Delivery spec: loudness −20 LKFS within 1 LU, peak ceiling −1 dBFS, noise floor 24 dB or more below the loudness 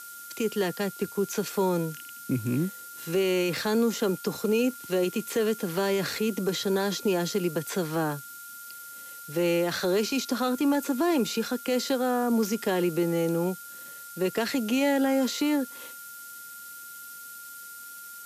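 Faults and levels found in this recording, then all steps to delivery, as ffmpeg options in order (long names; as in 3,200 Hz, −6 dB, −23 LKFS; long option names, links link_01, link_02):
interfering tone 1,400 Hz; level of the tone −44 dBFS; background noise floor −43 dBFS; target noise floor −52 dBFS; integrated loudness −27.5 LKFS; sample peak −15.5 dBFS; target loudness −20.0 LKFS
→ -af "bandreject=frequency=1400:width=30"
-af "afftdn=noise_reduction=9:noise_floor=-43"
-af "volume=7.5dB"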